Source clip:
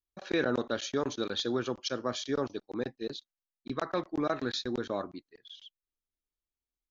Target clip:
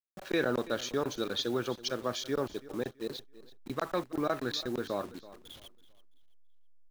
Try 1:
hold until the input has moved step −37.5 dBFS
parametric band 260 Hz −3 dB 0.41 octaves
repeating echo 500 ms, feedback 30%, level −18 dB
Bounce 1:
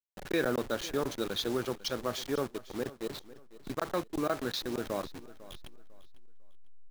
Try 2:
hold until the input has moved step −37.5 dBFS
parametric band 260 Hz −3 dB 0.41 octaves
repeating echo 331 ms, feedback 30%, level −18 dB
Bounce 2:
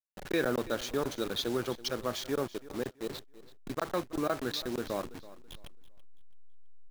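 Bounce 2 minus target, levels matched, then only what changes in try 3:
hold until the input has moved: distortion +9 dB
change: hold until the input has moved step −46.5 dBFS

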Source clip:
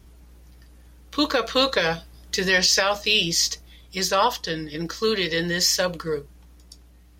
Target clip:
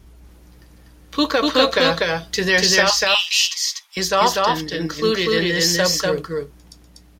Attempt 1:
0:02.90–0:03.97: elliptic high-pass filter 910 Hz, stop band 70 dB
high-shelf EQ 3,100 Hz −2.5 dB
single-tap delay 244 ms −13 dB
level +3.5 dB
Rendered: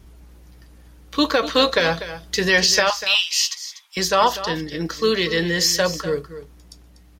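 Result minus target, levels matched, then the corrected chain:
echo-to-direct −11 dB
0:02.90–0:03.97: elliptic high-pass filter 910 Hz, stop band 70 dB
high-shelf EQ 3,100 Hz −2.5 dB
single-tap delay 244 ms −2 dB
level +3.5 dB

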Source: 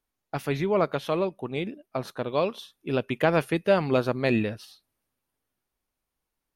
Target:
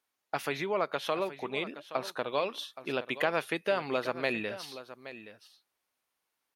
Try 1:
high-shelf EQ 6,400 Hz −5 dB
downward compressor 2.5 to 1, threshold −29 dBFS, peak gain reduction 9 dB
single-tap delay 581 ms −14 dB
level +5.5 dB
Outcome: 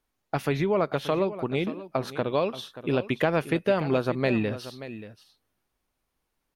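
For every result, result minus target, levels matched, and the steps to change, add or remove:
echo 241 ms early; 1,000 Hz band −3.0 dB
change: single-tap delay 822 ms −14 dB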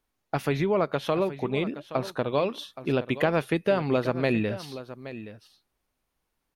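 1,000 Hz band −3.0 dB
add after downward compressor: high-pass filter 910 Hz 6 dB per octave

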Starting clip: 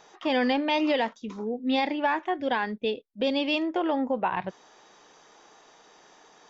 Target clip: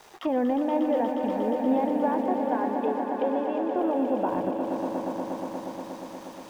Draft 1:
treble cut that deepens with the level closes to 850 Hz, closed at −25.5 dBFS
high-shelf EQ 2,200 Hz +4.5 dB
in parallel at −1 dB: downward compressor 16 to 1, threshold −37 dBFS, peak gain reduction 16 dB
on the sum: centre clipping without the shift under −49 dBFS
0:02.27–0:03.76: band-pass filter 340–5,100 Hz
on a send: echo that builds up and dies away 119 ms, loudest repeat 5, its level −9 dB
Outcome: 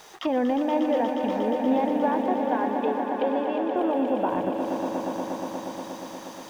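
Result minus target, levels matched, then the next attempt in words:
downward compressor: peak gain reduction −5.5 dB; 4,000 Hz band +5.5 dB
treble cut that deepens with the level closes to 850 Hz, closed at −25.5 dBFS
high-shelf EQ 2,200 Hz −5 dB
in parallel at −1 dB: downward compressor 16 to 1, threshold −43.5 dBFS, peak gain reduction 21.5 dB
on the sum: centre clipping without the shift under −49 dBFS
0:02.27–0:03.76: band-pass filter 340–5,100 Hz
on a send: echo that builds up and dies away 119 ms, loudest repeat 5, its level −9 dB

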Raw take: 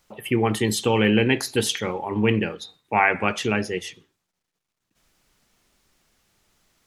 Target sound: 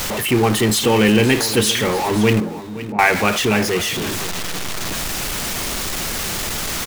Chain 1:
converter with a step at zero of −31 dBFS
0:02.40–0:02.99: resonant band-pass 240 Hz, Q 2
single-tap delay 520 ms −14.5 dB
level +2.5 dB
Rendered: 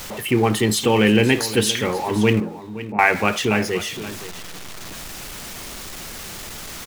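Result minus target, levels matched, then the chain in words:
converter with a step at zero: distortion −9 dB
converter with a step at zero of −20.5 dBFS
0:02.40–0:02.99: resonant band-pass 240 Hz, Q 2
single-tap delay 520 ms −14.5 dB
level +2.5 dB

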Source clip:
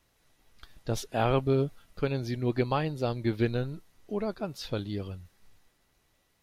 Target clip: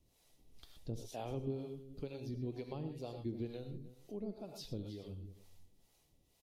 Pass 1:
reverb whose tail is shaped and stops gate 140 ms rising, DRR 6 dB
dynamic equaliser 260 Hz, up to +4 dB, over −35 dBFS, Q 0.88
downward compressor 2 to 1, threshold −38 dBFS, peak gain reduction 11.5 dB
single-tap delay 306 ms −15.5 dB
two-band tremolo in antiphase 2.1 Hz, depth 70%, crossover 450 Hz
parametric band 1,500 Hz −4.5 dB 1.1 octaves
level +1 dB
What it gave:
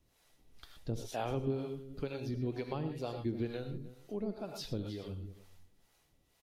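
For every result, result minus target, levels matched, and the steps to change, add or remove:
2,000 Hz band +5.5 dB; downward compressor: peak gain reduction −4.5 dB
change: parametric band 1,500 Hz −15.5 dB 1.1 octaves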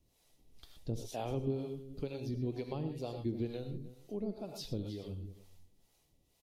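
downward compressor: peak gain reduction −4.5 dB
change: downward compressor 2 to 1, threshold −47 dBFS, peak gain reduction 16 dB

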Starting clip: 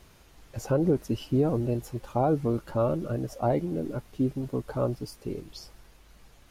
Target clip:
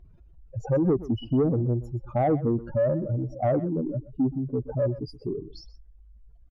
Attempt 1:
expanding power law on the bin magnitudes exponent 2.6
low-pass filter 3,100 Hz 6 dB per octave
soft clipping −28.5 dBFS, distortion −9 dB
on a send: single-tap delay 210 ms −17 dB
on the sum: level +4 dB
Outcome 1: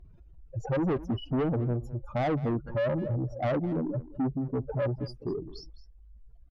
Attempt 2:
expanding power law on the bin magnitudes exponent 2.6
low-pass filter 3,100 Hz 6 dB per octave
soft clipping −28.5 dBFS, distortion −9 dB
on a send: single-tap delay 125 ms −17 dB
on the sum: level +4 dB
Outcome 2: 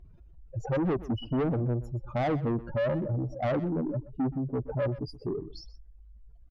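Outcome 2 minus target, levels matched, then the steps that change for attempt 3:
soft clipping: distortion +10 dB
change: soft clipping −19.5 dBFS, distortion −19 dB

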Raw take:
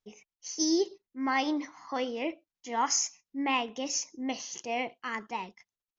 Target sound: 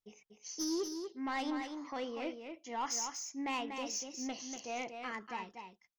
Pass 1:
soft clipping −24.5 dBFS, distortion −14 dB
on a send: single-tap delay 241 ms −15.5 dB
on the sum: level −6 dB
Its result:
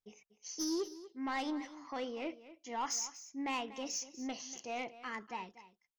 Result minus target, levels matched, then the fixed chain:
echo-to-direct −9 dB
soft clipping −24.5 dBFS, distortion −14 dB
on a send: single-tap delay 241 ms −6.5 dB
on the sum: level −6 dB

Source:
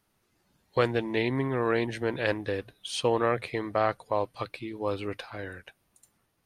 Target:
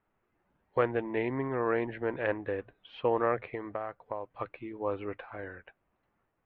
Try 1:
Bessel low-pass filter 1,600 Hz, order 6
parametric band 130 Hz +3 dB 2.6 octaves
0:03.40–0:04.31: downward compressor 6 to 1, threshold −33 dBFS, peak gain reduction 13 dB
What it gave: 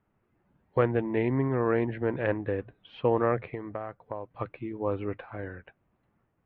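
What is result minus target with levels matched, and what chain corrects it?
125 Hz band +6.5 dB
Bessel low-pass filter 1,600 Hz, order 6
parametric band 130 Hz −7 dB 2.6 octaves
0:03.40–0:04.31: downward compressor 6 to 1, threshold −33 dBFS, peak gain reduction 11 dB

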